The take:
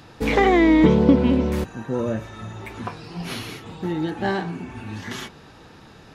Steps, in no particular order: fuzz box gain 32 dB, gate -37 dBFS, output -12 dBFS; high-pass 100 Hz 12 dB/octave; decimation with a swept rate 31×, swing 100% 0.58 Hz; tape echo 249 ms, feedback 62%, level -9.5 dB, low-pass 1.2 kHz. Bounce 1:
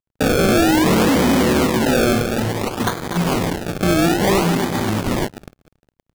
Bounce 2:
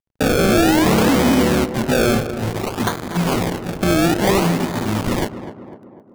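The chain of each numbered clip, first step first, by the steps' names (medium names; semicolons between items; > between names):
tape echo > fuzz box > high-pass > decimation with a swept rate; fuzz box > high-pass > decimation with a swept rate > tape echo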